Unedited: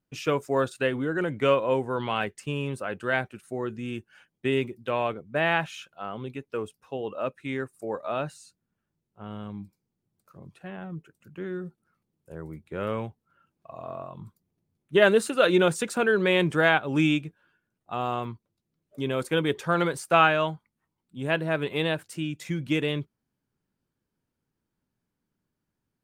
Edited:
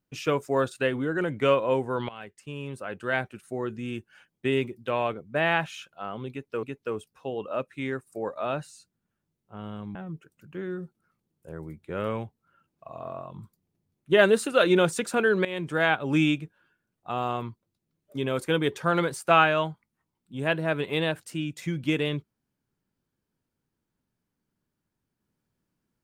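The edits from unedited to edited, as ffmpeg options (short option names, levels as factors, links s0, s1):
-filter_complex "[0:a]asplit=5[s0][s1][s2][s3][s4];[s0]atrim=end=2.09,asetpts=PTS-STARTPTS,afade=t=out:st=2.086:d=0.004:c=hsin:silence=0.125893[s5];[s1]atrim=start=2.09:end=6.632,asetpts=PTS-STARTPTS,afade=t=in:d=1.22:silence=0.125893[s6];[s2]atrim=start=6.298:end=9.622[s7];[s3]atrim=start=10.778:end=16.28,asetpts=PTS-STARTPTS,afade=t=out:st=5.498:d=0.004:c=hsin:silence=0.158489[s8];[s4]atrim=start=16.28,asetpts=PTS-STARTPTS,afade=t=in:d=0.57:silence=0.158489[s9];[s5][s6]concat=n=2:v=0:a=1[s10];[s10][s7]acrossfade=d=0.004:c1=hsin:c2=hsin[s11];[s8][s9]concat=n=2:v=0:a=1[s12];[s11][s12]acrossfade=d=0.004:c1=hsin:c2=hsin"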